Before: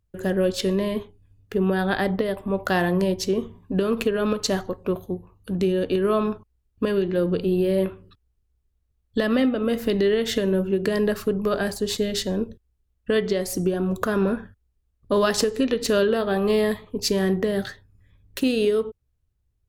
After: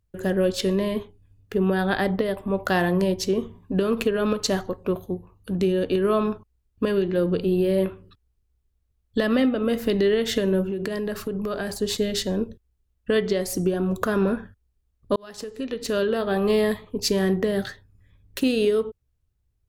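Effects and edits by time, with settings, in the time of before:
0:10.69–0:11.81: downward compressor, threshold −24 dBFS
0:15.16–0:16.41: fade in

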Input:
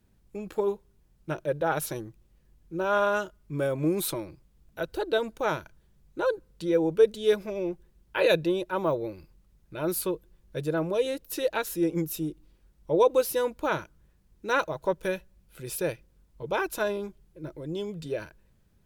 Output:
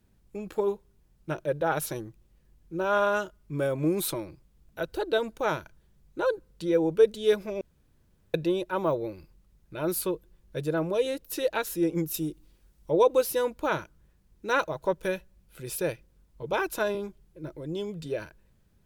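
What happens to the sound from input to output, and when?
0:07.61–0:08.34: fill with room tone
0:12.14–0:12.91: high-shelf EQ 3,600 Hz +6.5 dB
0:16.53–0:16.95: multiband upward and downward compressor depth 40%

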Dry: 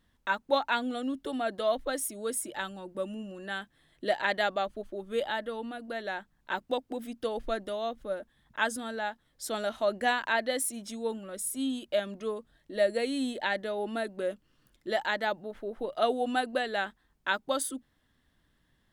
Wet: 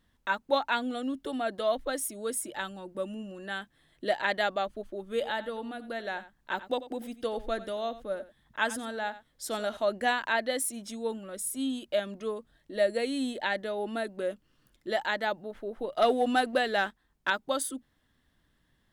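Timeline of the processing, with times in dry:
0:05.08–0:09.77: single-tap delay 91 ms −15.5 dB
0:15.97–0:17.30: leveller curve on the samples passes 1

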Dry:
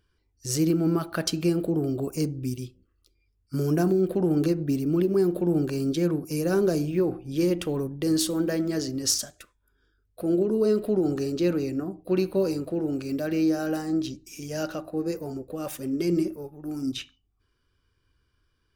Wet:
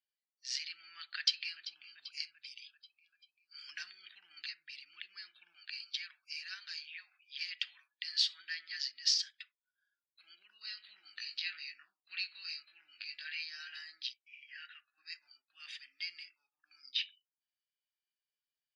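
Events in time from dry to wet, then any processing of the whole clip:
0:01.16–0:01.82: delay throw 390 ms, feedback 65%, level −15 dB
0:03.69–0:04.09: envelope flattener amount 100%
0:05.55–0:08.39: elliptic band-stop filter 110–590 Hz
0:10.50–0:13.41: double-tracking delay 20 ms −4.5 dB
0:14.13–0:14.98: resonant band-pass 1,800 Hz, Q 1.9
whole clip: noise reduction from a noise print of the clip's start 19 dB; elliptic band-pass filter 1,800–4,800 Hz, stop band 60 dB; spectral tilt +2 dB per octave; level −1 dB

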